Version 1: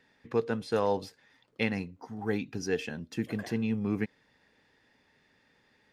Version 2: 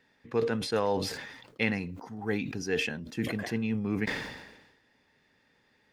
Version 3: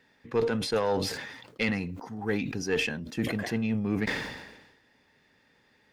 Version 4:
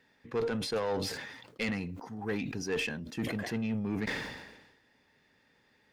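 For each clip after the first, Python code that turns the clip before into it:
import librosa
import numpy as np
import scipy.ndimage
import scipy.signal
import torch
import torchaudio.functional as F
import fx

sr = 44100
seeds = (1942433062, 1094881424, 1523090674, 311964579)

y1 = fx.dynamic_eq(x, sr, hz=2100.0, q=1.4, threshold_db=-48.0, ratio=4.0, max_db=4)
y1 = fx.sustainer(y1, sr, db_per_s=52.0)
y1 = y1 * librosa.db_to_amplitude(-1.0)
y2 = fx.diode_clip(y1, sr, knee_db=-20.0)
y2 = y2 * librosa.db_to_amplitude(3.0)
y3 = 10.0 ** (-21.5 / 20.0) * np.tanh(y2 / 10.0 ** (-21.5 / 20.0))
y3 = y3 * librosa.db_to_amplitude(-3.0)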